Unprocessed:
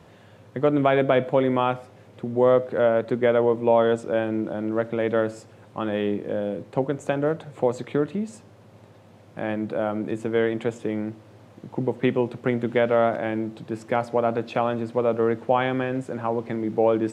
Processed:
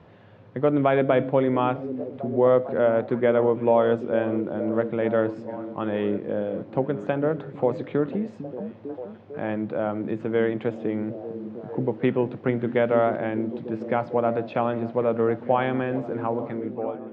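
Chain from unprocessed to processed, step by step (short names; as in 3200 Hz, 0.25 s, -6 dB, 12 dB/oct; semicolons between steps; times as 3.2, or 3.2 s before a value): ending faded out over 0.87 s; air absorption 250 m; delay with a stepping band-pass 0.45 s, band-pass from 200 Hz, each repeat 0.7 oct, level -7 dB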